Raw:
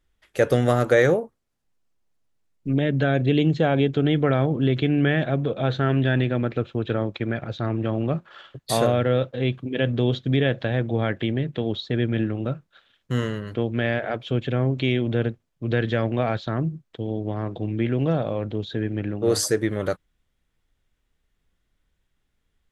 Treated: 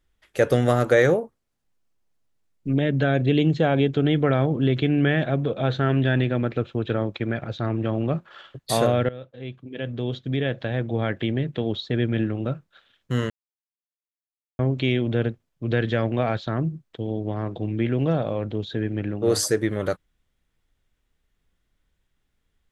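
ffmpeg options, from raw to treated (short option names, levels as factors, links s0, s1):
-filter_complex "[0:a]asplit=4[s0][s1][s2][s3];[s0]atrim=end=9.09,asetpts=PTS-STARTPTS,afade=t=out:st=9.086:d=0.004:c=hsin:silence=0.11885[s4];[s1]atrim=start=9.09:end=13.3,asetpts=PTS-STARTPTS,afade=t=in:d=2.27:silence=0.11885,afade=t=out:st=4.206:d=0.004:c=hsin[s5];[s2]atrim=start=13.3:end=14.59,asetpts=PTS-STARTPTS,volume=0[s6];[s3]atrim=start=14.59,asetpts=PTS-STARTPTS,afade=t=in:d=0.004:c=hsin[s7];[s4][s5][s6][s7]concat=n=4:v=0:a=1"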